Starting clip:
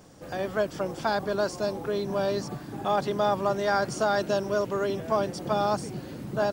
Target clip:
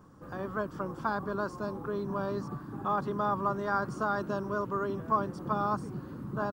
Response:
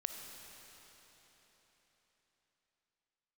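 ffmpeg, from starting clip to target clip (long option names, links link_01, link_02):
-af "firequalizer=gain_entry='entry(240,0);entry(690,-10);entry(1100,6);entry(2100,-13);entry(6000,-15);entry(15000,-9)':delay=0.05:min_phase=1,volume=-2dB"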